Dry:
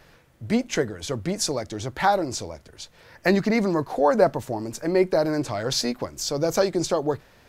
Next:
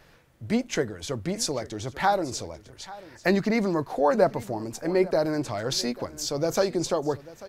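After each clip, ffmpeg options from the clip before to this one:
-af "aecho=1:1:841:0.112,volume=0.75"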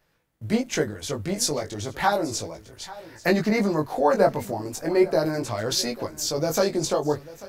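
-af "agate=range=0.178:threshold=0.00282:ratio=16:detection=peak,highshelf=f=11000:g=10.5,flanger=delay=18:depth=2.3:speed=0.35,volume=1.78"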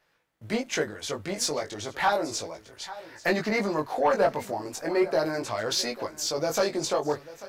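-filter_complex "[0:a]asplit=2[s0][s1];[s1]highpass=f=720:p=1,volume=4.47,asoftclip=type=tanh:threshold=0.501[s2];[s0][s2]amix=inputs=2:normalize=0,lowpass=f=4400:p=1,volume=0.501,volume=0.501"

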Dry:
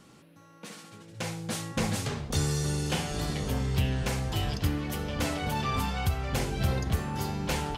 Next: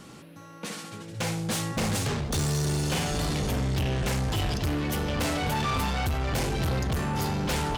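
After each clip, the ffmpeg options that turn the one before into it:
-af "asoftclip=type=tanh:threshold=0.0237,volume=2.66"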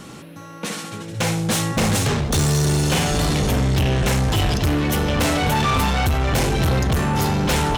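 -af "bandreject=f=4700:w=19,volume=2.66"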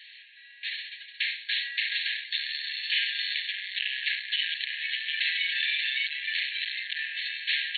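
-af "afftfilt=real='re*between(b*sr/4096,1600,4400)':imag='im*between(b*sr/4096,1600,4400)':win_size=4096:overlap=0.75"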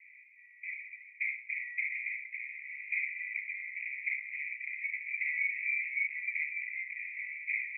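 -af "asuperpass=centerf=2200:order=12:qfactor=4.2"

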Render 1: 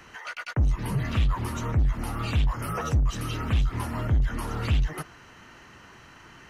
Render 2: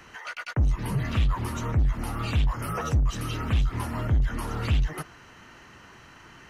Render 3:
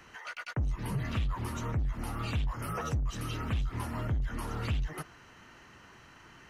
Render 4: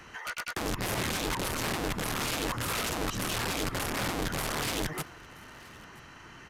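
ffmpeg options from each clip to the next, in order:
-af anull
-af "acompressor=threshold=0.0794:ratio=6,volume=0.562"
-af "aeval=exprs='(mod(37.6*val(0)+1,2)-1)/37.6':c=same,aecho=1:1:977:0.0668,aresample=32000,aresample=44100,volume=1.78"

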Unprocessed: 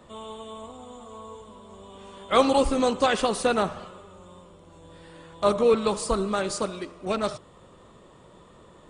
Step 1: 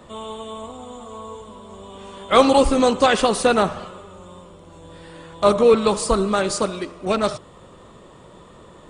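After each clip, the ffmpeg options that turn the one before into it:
-af "acontrast=22,volume=1.19"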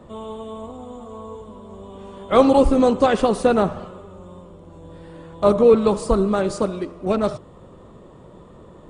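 -af "tiltshelf=f=1100:g=6.5,volume=0.668"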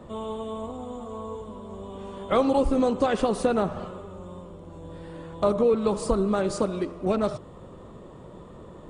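-af "acompressor=threshold=0.0794:ratio=2.5"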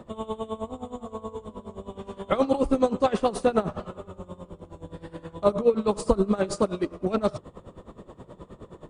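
-af "aeval=exprs='val(0)*pow(10,-18*(0.5-0.5*cos(2*PI*9.5*n/s))/20)':c=same,volume=1.68"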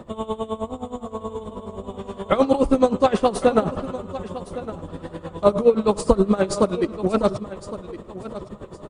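-af "aecho=1:1:1111|2222|3333:0.188|0.0584|0.0181,volume=1.78"

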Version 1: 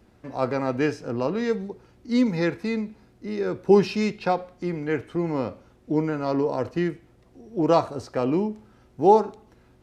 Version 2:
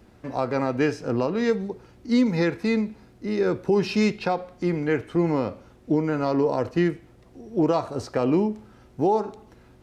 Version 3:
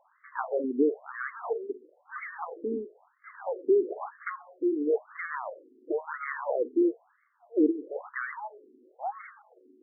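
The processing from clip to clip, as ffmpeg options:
-af "alimiter=limit=0.158:level=0:latency=1:release=237,volume=1.58"
-af "acrusher=samples=17:mix=1:aa=0.000001:lfo=1:lforange=10.2:lforate=2.7,afftfilt=real='re*between(b*sr/1024,310*pow(1600/310,0.5+0.5*sin(2*PI*1*pts/sr))/1.41,310*pow(1600/310,0.5+0.5*sin(2*PI*1*pts/sr))*1.41)':imag='im*between(b*sr/1024,310*pow(1600/310,0.5+0.5*sin(2*PI*1*pts/sr))/1.41,310*pow(1600/310,0.5+0.5*sin(2*PI*1*pts/sr))*1.41)':win_size=1024:overlap=0.75"

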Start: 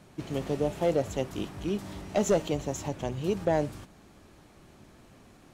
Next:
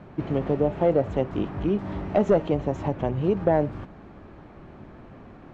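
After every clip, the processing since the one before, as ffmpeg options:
-filter_complex "[0:a]lowpass=1700,asplit=2[s0][s1];[s1]acompressor=threshold=0.02:ratio=6,volume=1.33[s2];[s0][s2]amix=inputs=2:normalize=0,volume=1.33"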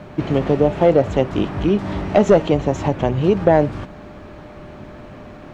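-af "highshelf=f=2900:g=11,aeval=exprs='val(0)+0.00316*sin(2*PI*600*n/s)':c=same,volume=2.24"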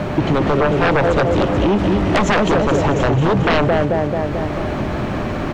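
-af "aecho=1:1:219|438|657|876|1095|1314:0.531|0.255|0.122|0.0587|0.0282|0.0135,aeval=exprs='0.944*sin(PI/2*3.98*val(0)/0.944)':c=same,acompressor=threshold=0.141:ratio=3"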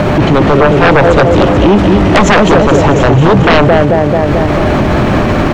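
-af "alimiter=level_in=6.68:limit=0.891:release=50:level=0:latency=1,volume=0.891"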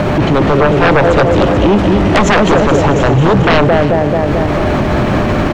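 -af "aecho=1:1:315:0.188,volume=0.708"

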